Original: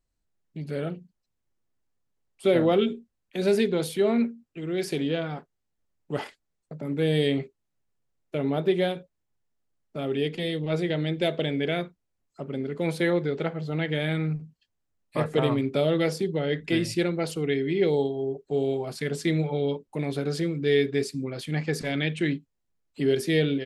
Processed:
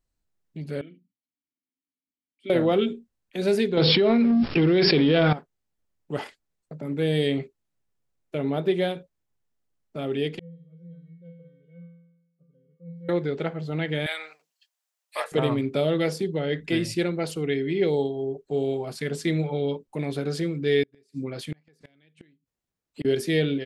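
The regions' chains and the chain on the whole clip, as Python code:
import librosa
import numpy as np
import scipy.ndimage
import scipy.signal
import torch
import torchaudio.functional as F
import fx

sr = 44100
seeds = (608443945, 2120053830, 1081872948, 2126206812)

y = fx.chain(x, sr, fx.vowel_filter(vowel='i'),
    fx.hum_notches(base_hz=60, count=2), at=(0.81, 2.5))
y = fx.chain(y, sr, fx.law_mismatch(coded='mu'),
    fx.brickwall_lowpass(high_hz=5500.0),
    fx.env_flatten(amount_pct=100), at=(3.77, 5.33))
y = fx.chain(y, sr, fx.moving_average(points=51),
    fx.comb_fb(f0_hz=170.0, decay_s=0.97, harmonics='odd', damping=0.0, mix_pct=100), at=(10.39, 13.09))
y = fx.chain(y, sr, fx.highpass(hz=620.0, slope=24),
    fx.high_shelf(hz=2500.0, db=9.5), at=(14.06, 15.32))
y = fx.chain(y, sr, fx.highpass(hz=52.0, slope=6),
    fx.gate_flip(shuts_db=-21.0, range_db=-35), at=(20.83, 23.05))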